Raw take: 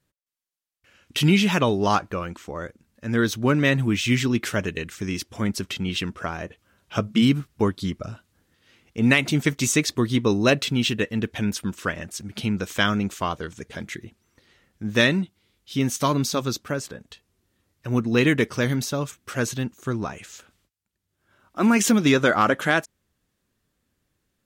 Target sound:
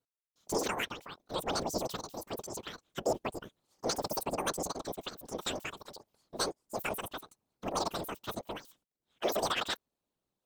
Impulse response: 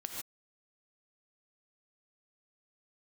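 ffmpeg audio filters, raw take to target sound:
-af "afftfilt=real='hypot(re,im)*cos(2*PI*random(0))':imag='hypot(re,im)*sin(2*PI*random(1))':win_size=512:overlap=0.75,asetrate=103194,aresample=44100,volume=-7.5dB"

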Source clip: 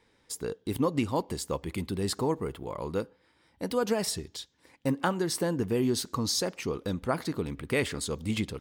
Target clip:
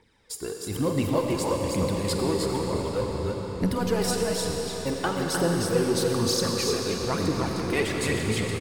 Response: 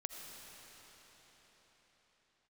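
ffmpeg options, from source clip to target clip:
-filter_complex "[0:a]aecho=1:1:48|305|328:0.2|0.562|0.398,aphaser=in_gain=1:out_gain=1:delay=3:decay=0.59:speed=1.1:type=triangular,asplit=2[link_01][link_02];[link_02]asoftclip=type=hard:threshold=-25.5dB,volume=-7dB[link_03];[link_01][link_03]amix=inputs=2:normalize=0,asplit=3[link_04][link_05][link_06];[link_04]afade=type=out:start_time=2.99:duration=0.02[link_07];[link_05]asubboost=boost=9:cutoff=140,afade=type=in:start_time=2.99:duration=0.02,afade=type=out:start_time=3.74:duration=0.02[link_08];[link_06]afade=type=in:start_time=3.74:duration=0.02[link_09];[link_07][link_08][link_09]amix=inputs=3:normalize=0[link_10];[1:a]atrim=start_sample=2205,asetrate=39690,aresample=44100[link_11];[link_10][link_11]afir=irnorm=-1:irlink=0"

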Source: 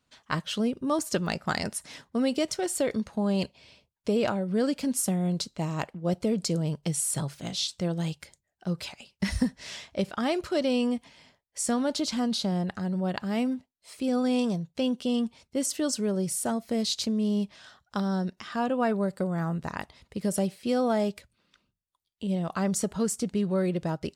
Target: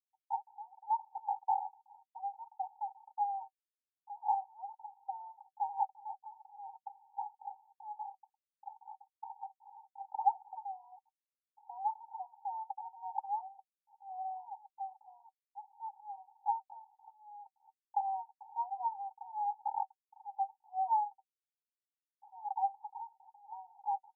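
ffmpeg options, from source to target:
ffmpeg -i in.wav -af "aeval=exprs='val(0)*gte(abs(val(0)),0.00708)':channel_layout=same,asuperpass=centerf=840:order=12:qfactor=5.3,volume=8.5dB" out.wav

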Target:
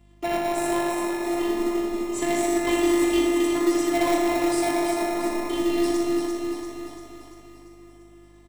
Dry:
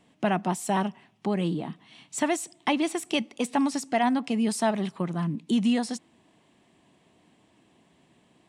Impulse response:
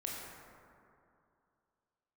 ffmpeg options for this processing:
-filter_complex "[1:a]atrim=start_sample=2205,asetrate=36603,aresample=44100[link_01];[0:a][link_01]afir=irnorm=-1:irlink=0,afftfilt=real='hypot(re,im)*cos(PI*b)':imag='0':win_size=512:overlap=0.75,asplit=2[link_02][link_03];[link_03]acrusher=samples=28:mix=1:aa=0.000001,volume=-8.5dB[link_04];[link_02][link_04]amix=inputs=2:normalize=0,aecho=1:1:343|686|1029|1372|1715|2058|2401:0.562|0.315|0.176|0.0988|0.0553|0.031|0.0173,aeval=exprs='val(0)+0.00141*(sin(2*PI*50*n/s)+sin(2*PI*2*50*n/s)/2+sin(2*PI*3*50*n/s)/3+sin(2*PI*4*50*n/s)/4+sin(2*PI*5*50*n/s)/5)':channel_layout=same,acrossover=split=330|3100[link_05][link_06][link_07];[link_06]asoftclip=type=tanh:threshold=-24.5dB[link_08];[link_05][link_08][link_07]amix=inputs=3:normalize=0,volume=4dB"

